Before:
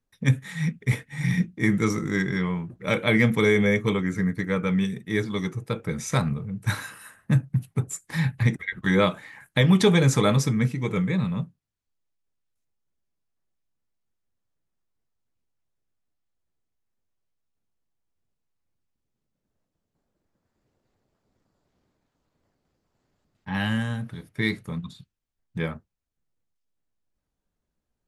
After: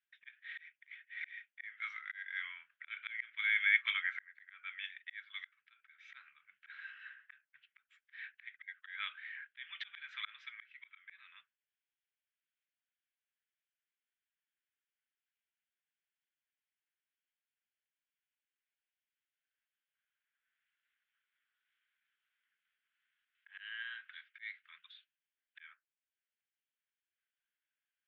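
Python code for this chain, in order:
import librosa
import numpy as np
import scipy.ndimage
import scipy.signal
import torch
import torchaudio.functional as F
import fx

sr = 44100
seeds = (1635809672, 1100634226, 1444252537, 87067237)

y = scipy.signal.sosfilt(scipy.signal.ellip(3, 1.0, 70, [1500.0, 3300.0], 'bandpass', fs=sr, output='sos'), x)
y = fx.auto_swell(y, sr, attack_ms=632.0)
y = F.gain(torch.from_numpy(y), 2.0).numpy()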